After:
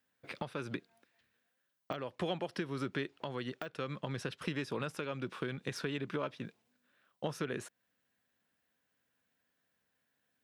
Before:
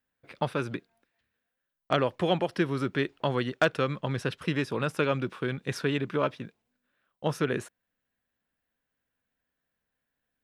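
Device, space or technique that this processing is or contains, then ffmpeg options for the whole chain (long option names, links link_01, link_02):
broadcast voice chain: -af "highpass=100,deesser=0.75,acompressor=threshold=-37dB:ratio=4,equalizer=frequency=5300:width_type=o:width=1.9:gain=3,alimiter=level_in=1dB:limit=-24dB:level=0:latency=1:release=310,volume=-1dB,volume=2.5dB"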